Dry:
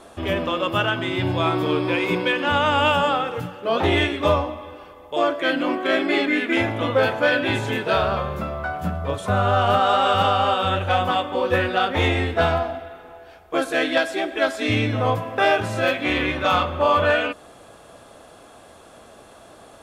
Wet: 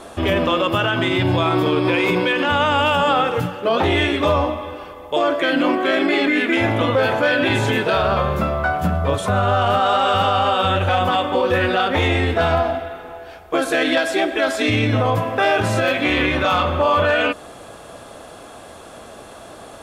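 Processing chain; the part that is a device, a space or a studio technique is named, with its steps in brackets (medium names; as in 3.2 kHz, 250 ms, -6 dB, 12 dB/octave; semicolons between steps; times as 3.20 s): clipper into limiter (hard clipper -9.5 dBFS, distortion -38 dB; peak limiter -16.5 dBFS, peak gain reduction 7 dB); trim +7.5 dB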